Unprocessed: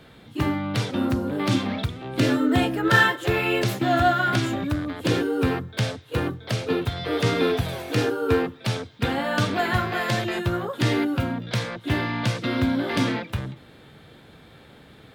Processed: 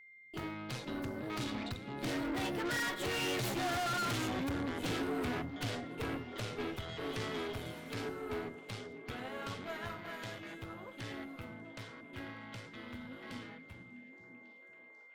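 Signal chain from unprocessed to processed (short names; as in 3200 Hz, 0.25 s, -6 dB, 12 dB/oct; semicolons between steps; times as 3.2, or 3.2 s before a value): Doppler pass-by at 3.82, 24 m/s, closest 12 m; gate with hold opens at -47 dBFS; low shelf 470 Hz -4.5 dB; in parallel at +2 dB: compressor, threshold -32 dBFS, peak gain reduction 14.5 dB; on the sum: tube stage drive 34 dB, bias 0.7; whine 2100 Hz -55 dBFS; on a send: delay with a stepping band-pass 0.493 s, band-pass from 190 Hz, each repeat 0.7 oct, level -5 dB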